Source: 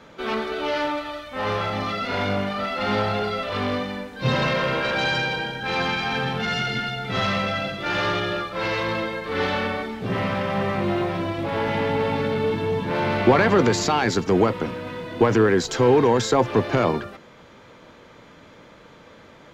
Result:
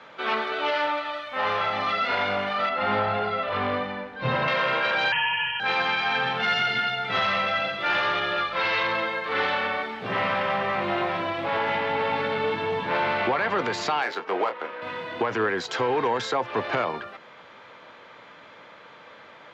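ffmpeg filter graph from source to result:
-filter_complex "[0:a]asettb=1/sr,asplit=3[a][b][c];[a]atrim=end=2.694[d];[b]atrim=start=2.69:end=4.48,asetpts=PTS-STARTPTS,afade=t=in:d=0.004:c=qsin,afade=t=out:st=1.786:d=0.004:c=qsin,lowpass=f=1.8k:p=1,lowshelf=f=140:g=10[e];[c]atrim=start=4.476[f];[d][e]acrossfade=d=0.004:c1=hsin:c2=qsin[g];[g][f]acrossfade=d=0.004:c1=qsin:c2=hsin,asettb=1/sr,asplit=3[h][i][j];[h]atrim=end=5.124[k];[i]atrim=start=5.12:end=5.6,asetpts=PTS-STARTPTS,afade=t=in:d=0.004:c=qsin,afade=t=out:st=0.476:d=0.004:c=qsin,lowpass=f=2.8k:t=q:w=0.5098,lowpass=f=2.8k:t=q:w=0.6013,lowpass=f=2.8k:t=q:w=0.9,lowpass=f=2.8k:t=q:w=2.563,afreqshift=-3300,lowshelf=f=470:g=7.5[l];[j]atrim=start=5.596[m];[k][l]acrossfade=d=0.004:c1=hsin:c2=qsin[n];[n][m]acrossfade=d=0.004:c1=qsin:c2=hsin,asettb=1/sr,asplit=3[o][p][q];[o]atrim=end=8.374[r];[p]atrim=start=8.37:end=8.87,asetpts=PTS-STARTPTS,afade=t=in:d=0.004:c=qsin,afade=t=out:st=0.496:d=0.004:c=qsin,lowpass=4.2k,aemphasis=mode=production:type=75fm,aeval=exprs='val(0)+0.0158*(sin(2*PI*50*n/s)+sin(2*PI*2*50*n/s)/2+sin(2*PI*3*50*n/s)/3+sin(2*PI*4*50*n/s)/4+sin(2*PI*5*50*n/s)/5)':c=same[s];[q]atrim=start=8.866[t];[r][s]acrossfade=d=0.004:c1=hsin:c2=qsin[u];[u][t]acrossfade=d=0.004:c1=qsin:c2=hsin,asettb=1/sr,asplit=3[v][w][x];[v]atrim=end=14.024[y];[w]atrim=start=14.02:end=14.82,asetpts=PTS-STARTPTS,afade=t=in:d=0.004:c=qsin,afade=t=out:st=0.796:d=0.004:c=qsin,highpass=420,adynamicsmooth=sensitivity=2.5:basefreq=1.9k,asplit=2[z][aa];[aa]adelay=25,volume=-9dB[ab];[z][ab]amix=inputs=2:normalize=0,atrim=end_sample=35280[ac];[x]atrim=start=14.816[ad];[y][ac]acrossfade=d=0.004:c1=hsin:c2=qsin[ae];[ae][ad]acrossfade=d=0.004:c1=qsin:c2=hsin,highpass=100,acrossover=split=580 4300:gain=0.224 1 0.141[af][ag][ah];[af][ag][ah]amix=inputs=3:normalize=0,alimiter=limit=-18.5dB:level=0:latency=1:release=422,volume=4dB"

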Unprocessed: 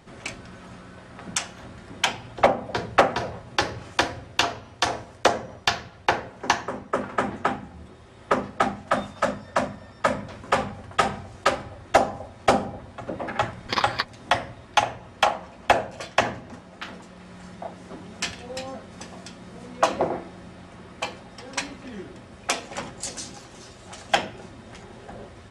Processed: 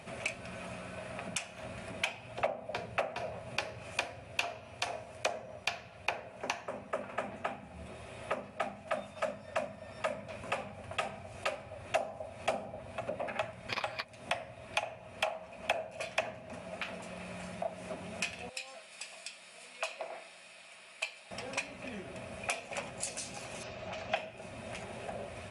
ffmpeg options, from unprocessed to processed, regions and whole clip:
-filter_complex "[0:a]asettb=1/sr,asplit=3[a][b][c];[a]atrim=end=18.494[d];[b]atrim=start=18.49:end=21.31,asetpts=PTS-STARTPTS,afade=t=in:d=0.004:c=qsin,afade=t=out:st=2.816:d=0.004:c=qsin,bandpass=f=5.8k:t=q:w=0.74,bandreject=f=6.1k:w=7.7[e];[c]atrim=start=21.306[f];[d][e]acrossfade=d=0.004:c1=hsin:c2=qsin[g];[g][f]acrossfade=d=0.004:c1=qsin:c2=hsin,asettb=1/sr,asplit=3[h][i][j];[h]atrim=end=23.634[k];[i]atrim=start=23.63:end=24.16,asetpts=PTS-STARTPTS,afade=t=in:d=0.004:c=qsin,afade=t=out:st=0.526:d=0.004:c=qsin,lowpass=f=6.1k:w=0.5412,lowpass=f=6.1k:w=1.3066,aemphasis=mode=reproduction:type=cd[l];[j]atrim=start=24.156[m];[k][l]acrossfade=d=0.004:c1=hsin:c2=qsin[n];[n][m]acrossfade=d=0.004:c1=qsin:c2=hsin,highpass=65,acompressor=threshold=-42dB:ratio=3,equalizer=f=315:t=o:w=0.33:g=-8,equalizer=f=630:t=o:w=0.33:g=11,equalizer=f=2.5k:t=o:w=0.33:g=12,equalizer=f=10k:t=o:w=0.33:g=12"

